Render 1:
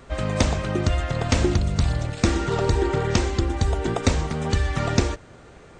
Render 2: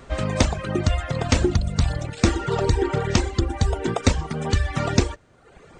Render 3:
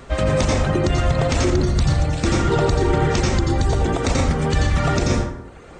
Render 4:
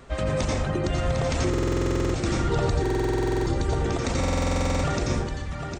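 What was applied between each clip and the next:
reverb removal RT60 0.9 s; trim +2 dB
reverberation RT60 0.75 s, pre-delay 78 ms, DRR 1.5 dB; peak limiter -13 dBFS, peak gain reduction 11 dB; trim +4 dB
on a send: delay 754 ms -7 dB; on the sum: buffer glitch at 1.49/2.81/4.19 s, samples 2048, times 13; trim -7 dB

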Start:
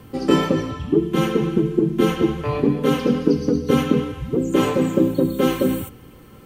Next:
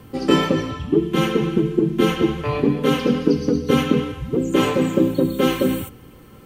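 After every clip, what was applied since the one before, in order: dynamic bell 2.8 kHz, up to +4 dB, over -40 dBFS, Q 0.76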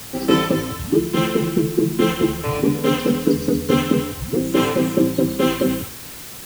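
word length cut 6-bit, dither triangular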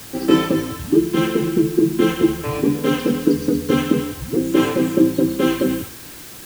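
small resonant body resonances 320/1600 Hz, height 7 dB; trim -2 dB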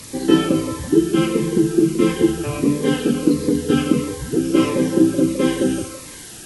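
knee-point frequency compression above 3.2 kHz 1.5:1; repeats whose band climbs or falls 165 ms, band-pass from 540 Hz, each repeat 0.7 oct, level -7.5 dB; Shepard-style phaser falling 1.5 Hz; trim +1 dB

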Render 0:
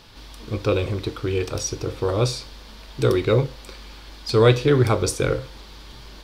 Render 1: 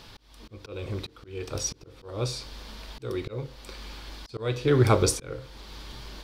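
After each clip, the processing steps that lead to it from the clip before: slow attack 571 ms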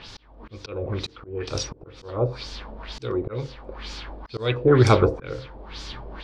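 LFO low-pass sine 2.1 Hz 600–6800 Hz; trim +4 dB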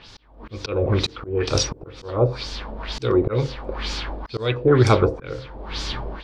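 level rider gain up to 12.5 dB; trim -3.5 dB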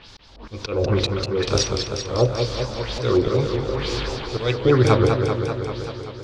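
fade out at the end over 1.62 s; modulated delay 194 ms, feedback 71%, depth 129 cents, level -5.5 dB

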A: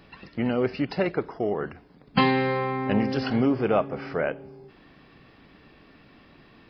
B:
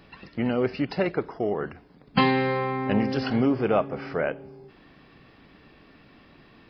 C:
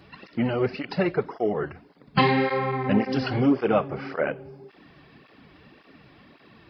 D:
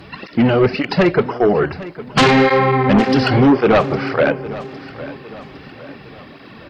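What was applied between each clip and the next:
no audible change
cancelling through-zero flanger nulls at 1.8 Hz, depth 4.8 ms; trim +4 dB
sine folder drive 9 dB, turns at -7 dBFS; feedback delay 808 ms, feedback 45%, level -16.5 dB

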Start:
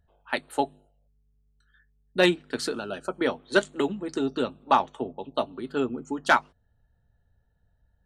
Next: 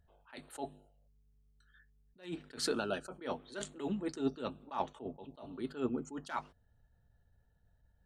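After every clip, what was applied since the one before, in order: attacks held to a fixed rise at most 170 dB/s; trim -2 dB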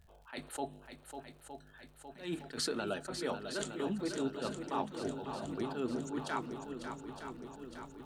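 compression 4:1, threshold -40 dBFS, peak gain reduction 11 dB; shuffle delay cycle 913 ms, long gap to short 1.5:1, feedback 58%, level -8 dB; crackle 85 per s -60 dBFS; trim +6 dB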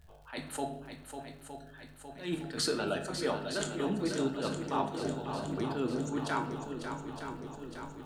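simulated room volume 140 m³, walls mixed, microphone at 0.48 m; trim +3 dB

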